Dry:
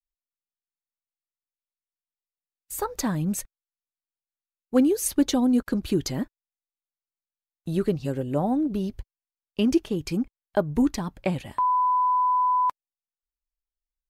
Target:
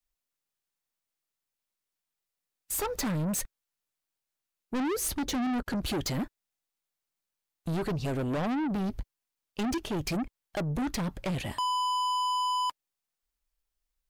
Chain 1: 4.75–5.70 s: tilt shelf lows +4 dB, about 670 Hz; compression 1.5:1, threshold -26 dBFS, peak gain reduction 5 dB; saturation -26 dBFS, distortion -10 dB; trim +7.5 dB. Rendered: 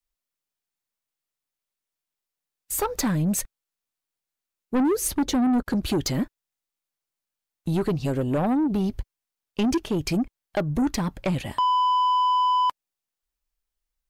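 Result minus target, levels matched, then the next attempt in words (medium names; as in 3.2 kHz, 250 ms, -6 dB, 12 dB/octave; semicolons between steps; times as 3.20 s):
saturation: distortion -5 dB
4.75–5.70 s: tilt shelf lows +4 dB, about 670 Hz; compression 1.5:1, threshold -26 dBFS, peak gain reduction 5 dB; saturation -35.5 dBFS, distortion -5 dB; trim +7.5 dB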